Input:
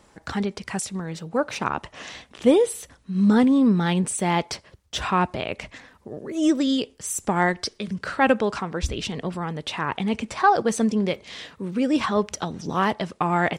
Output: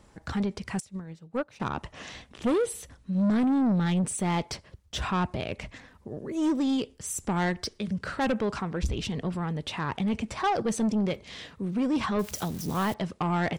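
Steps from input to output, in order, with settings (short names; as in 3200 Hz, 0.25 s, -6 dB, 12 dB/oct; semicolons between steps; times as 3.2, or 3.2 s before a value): 12.19–12.94 switching spikes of -26.5 dBFS; low shelf 200 Hz +9.5 dB; soft clip -16.5 dBFS, distortion -11 dB; 0.8–1.6 upward expander 2.5:1, over -32 dBFS; gain -4.5 dB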